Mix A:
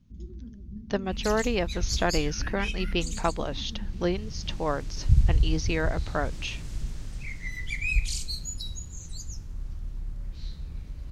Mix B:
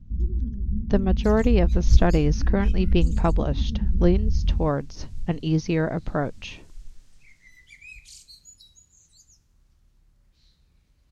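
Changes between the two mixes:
speech: add treble shelf 3.8 kHz +8 dB; second sound: add differentiator; master: add tilt EQ -4 dB/octave

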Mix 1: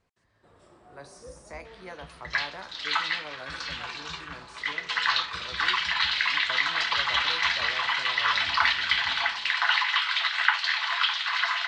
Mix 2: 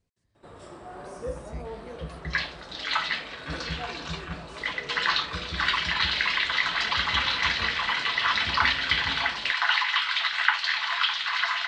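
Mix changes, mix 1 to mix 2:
speech: add peaking EQ 1.2 kHz -14.5 dB 2.9 oct; first sound +12.0 dB

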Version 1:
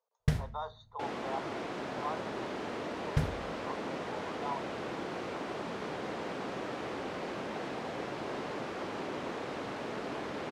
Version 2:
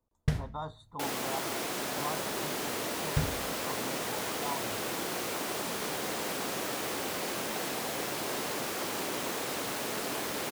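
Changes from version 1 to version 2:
speech: remove brick-wall FIR band-pass 400–6900 Hz; second sound: remove tape spacing loss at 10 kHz 28 dB

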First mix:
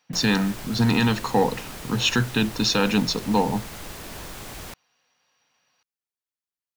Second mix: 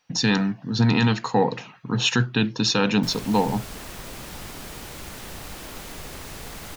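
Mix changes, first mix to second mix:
speech: remove high-pass 110 Hz; background: entry +2.90 s

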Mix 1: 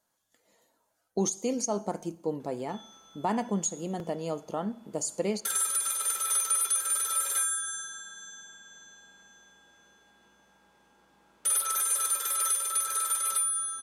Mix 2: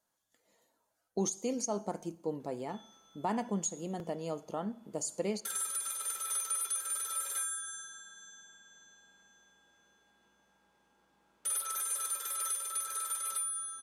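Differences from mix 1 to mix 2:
speech -4.5 dB; background -7.5 dB

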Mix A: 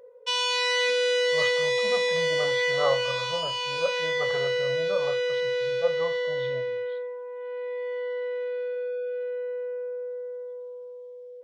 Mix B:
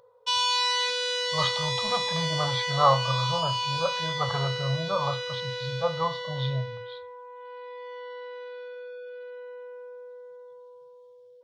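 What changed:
speech +7.5 dB; master: add graphic EQ 125/250/500/1000/2000/4000 Hz +9/-7/-10/+8/-9/+5 dB

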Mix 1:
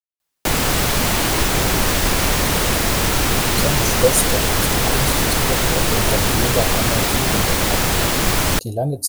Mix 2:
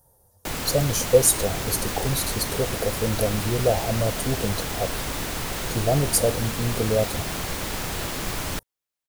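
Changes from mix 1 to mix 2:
speech: entry -2.90 s; background -11.5 dB

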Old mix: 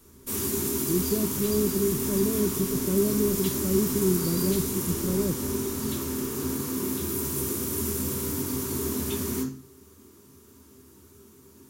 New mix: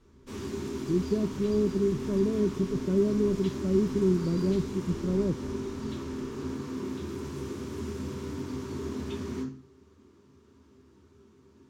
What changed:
background -4.0 dB; master: add distance through air 160 m

